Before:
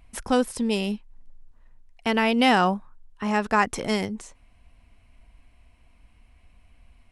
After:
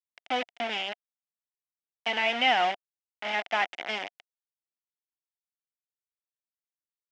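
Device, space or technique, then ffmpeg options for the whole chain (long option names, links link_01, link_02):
hand-held game console: -af "acrusher=bits=3:mix=0:aa=0.000001,highpass=430,equalizer=frequency=440:width_type=q:width=4:gain=-7,equalizer=frequency=710:width_type=q:width=4:gain=9,equalizer=frequency=1100:width_type=q:width=4:gain=-7,equalizer=frequency=2100:width_type=q:width=4:gain=8,equalizer=frequency=3000:width_type=q:width=4:gain=8,equalizer=frequency=4300:width_type=q:width=4:gain=-7,lowpass=frequency=4700:width=0.5412,lowpass=frequency=4700:width=1.3066,volume=-7.5dB"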